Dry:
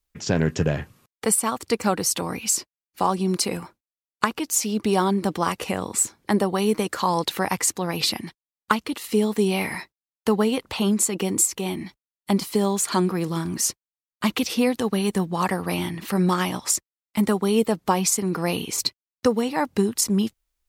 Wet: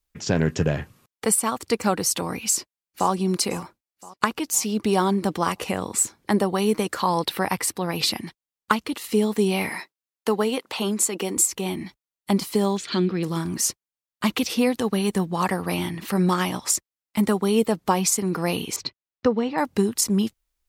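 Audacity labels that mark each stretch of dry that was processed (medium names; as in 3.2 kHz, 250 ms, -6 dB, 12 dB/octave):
2.480000	3.110000	echo throw 510 ms, feedback 55%, level -17.5 dB
6.980000	7.960000	peaking EQ 6.8 kHz -12 dB 0.26 oct
9.700000	11.370000	high-pass 260 Hz
12.770000	13.230000	FFT filter 370 Hz 0 dB, 980 Hz -12 dB, 1.5 kHz -3 dB, 3.6 kHz +5 dB, 11 kHz -24 dB
18.760000	19.580000	distance through air 190 m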